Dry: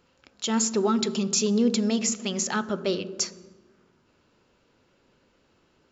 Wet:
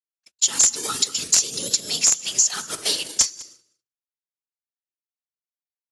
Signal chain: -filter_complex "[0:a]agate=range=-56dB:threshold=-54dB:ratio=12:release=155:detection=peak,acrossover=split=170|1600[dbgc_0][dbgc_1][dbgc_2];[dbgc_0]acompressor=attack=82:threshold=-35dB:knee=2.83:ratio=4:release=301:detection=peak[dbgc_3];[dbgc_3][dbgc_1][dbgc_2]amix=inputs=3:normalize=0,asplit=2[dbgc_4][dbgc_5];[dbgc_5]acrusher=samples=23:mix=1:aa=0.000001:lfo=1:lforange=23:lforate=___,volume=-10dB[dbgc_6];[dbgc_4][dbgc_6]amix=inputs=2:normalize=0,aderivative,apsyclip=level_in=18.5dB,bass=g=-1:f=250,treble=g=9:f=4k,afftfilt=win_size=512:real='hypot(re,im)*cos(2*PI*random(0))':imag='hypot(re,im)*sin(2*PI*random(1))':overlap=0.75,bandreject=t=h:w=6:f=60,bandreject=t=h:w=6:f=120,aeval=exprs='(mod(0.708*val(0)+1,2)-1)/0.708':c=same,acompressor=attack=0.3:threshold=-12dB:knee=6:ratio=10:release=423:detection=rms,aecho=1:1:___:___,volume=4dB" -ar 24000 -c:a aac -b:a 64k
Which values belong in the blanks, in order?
0.41, 199, 0.0944